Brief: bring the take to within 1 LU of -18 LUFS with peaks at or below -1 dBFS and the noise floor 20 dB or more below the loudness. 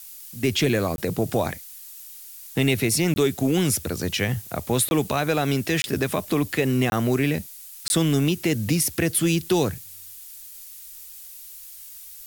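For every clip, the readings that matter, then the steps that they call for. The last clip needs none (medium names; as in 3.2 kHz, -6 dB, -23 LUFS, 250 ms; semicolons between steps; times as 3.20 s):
dropouts 6; longest dropout 21 ms; noise floor -42 dBFS; noise floor target -43 dBFS; loudness -23.0 LUFS; peak level -9.5 dBFS; loudness target -18.0 LUFS
-> interpolate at 0.96/3.14/4.89/5.82/6.90/7.88 s, 21 ms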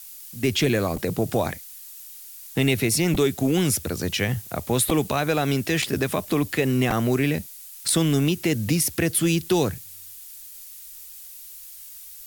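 dropouts 0; noise floor -42 dBFS; noise floor target -43 dBFS
-> noise print and reduce 6 dB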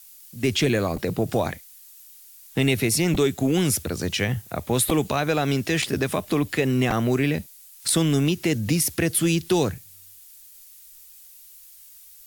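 noise floor -48 dBFS; loudness -23.0 LUFS; peak level -7.5 dBFS; loudness target -18.0 LUFS
-> trim +5 dB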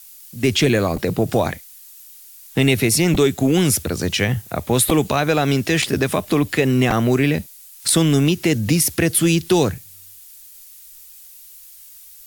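loudness -18.0 LUFS; peak level -2.5 dBFS; noise floor -43 dBFS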